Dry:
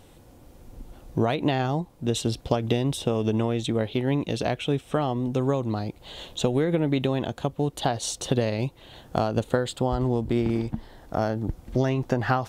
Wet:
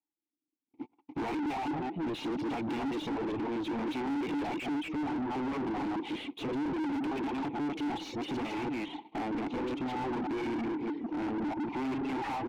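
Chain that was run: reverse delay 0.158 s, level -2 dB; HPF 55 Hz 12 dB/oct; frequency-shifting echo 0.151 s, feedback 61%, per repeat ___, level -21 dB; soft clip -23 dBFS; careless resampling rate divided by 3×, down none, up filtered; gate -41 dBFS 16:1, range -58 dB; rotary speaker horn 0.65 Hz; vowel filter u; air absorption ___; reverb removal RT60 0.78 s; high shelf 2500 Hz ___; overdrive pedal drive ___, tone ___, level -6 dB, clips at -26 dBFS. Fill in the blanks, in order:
+31 Hz, 96 m, +5 dB, 41 dB, 1200 Hz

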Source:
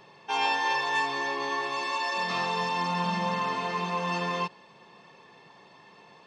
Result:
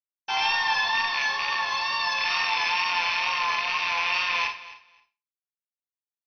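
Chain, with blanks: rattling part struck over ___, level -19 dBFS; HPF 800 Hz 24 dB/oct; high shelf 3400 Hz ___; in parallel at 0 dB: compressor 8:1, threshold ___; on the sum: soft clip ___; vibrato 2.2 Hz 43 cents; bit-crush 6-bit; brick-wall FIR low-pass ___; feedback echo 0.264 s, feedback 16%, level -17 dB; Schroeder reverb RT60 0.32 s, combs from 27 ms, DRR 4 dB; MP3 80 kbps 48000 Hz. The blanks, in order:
-43 dBFS, +8 dB, -37 dBFS, -15.5 dBFS, 6100 Hz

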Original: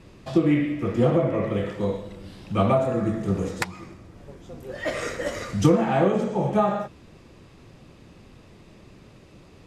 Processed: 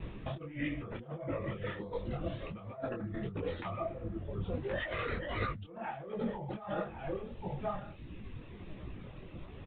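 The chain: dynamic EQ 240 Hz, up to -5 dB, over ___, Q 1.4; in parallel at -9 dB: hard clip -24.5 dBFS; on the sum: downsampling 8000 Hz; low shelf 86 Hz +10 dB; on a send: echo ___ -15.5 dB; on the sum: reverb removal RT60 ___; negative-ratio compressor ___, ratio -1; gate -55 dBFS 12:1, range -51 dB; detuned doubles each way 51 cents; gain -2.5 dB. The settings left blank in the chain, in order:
-35 dBFS, 1.073 s, 1.6 s, -33 dBFS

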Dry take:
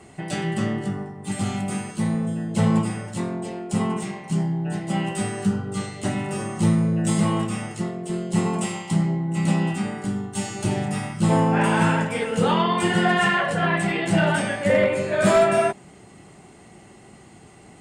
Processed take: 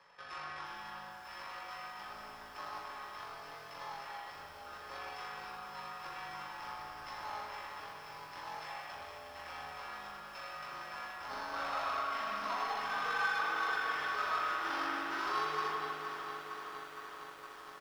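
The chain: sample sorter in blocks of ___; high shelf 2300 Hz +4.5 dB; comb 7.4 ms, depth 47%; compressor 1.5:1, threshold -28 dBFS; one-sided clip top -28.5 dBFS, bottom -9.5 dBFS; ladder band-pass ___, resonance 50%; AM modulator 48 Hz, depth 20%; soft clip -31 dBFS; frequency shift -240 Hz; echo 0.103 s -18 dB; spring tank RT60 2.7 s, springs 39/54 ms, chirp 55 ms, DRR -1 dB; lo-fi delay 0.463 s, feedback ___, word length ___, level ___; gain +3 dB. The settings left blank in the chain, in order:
8 samples, 1600 Hz, 80%, 10-bit, -9 dB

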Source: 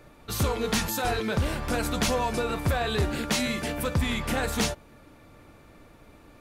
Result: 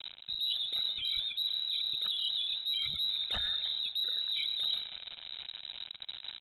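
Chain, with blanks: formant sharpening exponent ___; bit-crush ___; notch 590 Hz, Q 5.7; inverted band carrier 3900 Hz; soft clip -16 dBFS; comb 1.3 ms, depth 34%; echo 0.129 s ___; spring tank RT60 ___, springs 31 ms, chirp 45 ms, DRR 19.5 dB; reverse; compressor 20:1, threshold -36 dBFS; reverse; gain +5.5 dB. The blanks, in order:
3, 8-bit, -18.5 dB, 1.9 s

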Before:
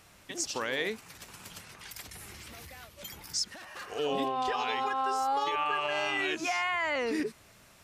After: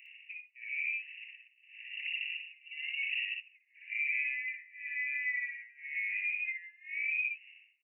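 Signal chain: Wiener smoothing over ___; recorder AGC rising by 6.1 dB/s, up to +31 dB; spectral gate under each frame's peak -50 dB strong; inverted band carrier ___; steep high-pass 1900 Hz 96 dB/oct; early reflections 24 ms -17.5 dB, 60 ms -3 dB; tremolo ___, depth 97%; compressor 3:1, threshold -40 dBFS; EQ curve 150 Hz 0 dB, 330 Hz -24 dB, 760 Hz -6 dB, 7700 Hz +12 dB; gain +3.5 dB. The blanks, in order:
15 samples, 2800 Hz, 0.96 Hz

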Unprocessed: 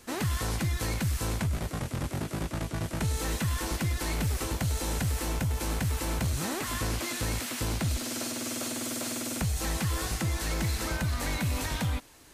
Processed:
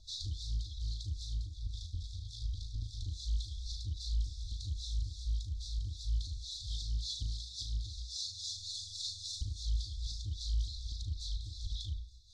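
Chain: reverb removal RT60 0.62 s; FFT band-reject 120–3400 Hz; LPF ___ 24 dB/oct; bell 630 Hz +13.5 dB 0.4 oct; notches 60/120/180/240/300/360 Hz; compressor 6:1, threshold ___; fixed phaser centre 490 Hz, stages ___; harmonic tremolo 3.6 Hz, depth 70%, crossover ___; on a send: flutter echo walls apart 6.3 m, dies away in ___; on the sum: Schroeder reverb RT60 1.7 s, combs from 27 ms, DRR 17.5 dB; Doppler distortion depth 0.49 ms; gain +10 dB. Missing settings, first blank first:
4700 Hz, -39 dBFS, 6, 650 Hz, 0.28 s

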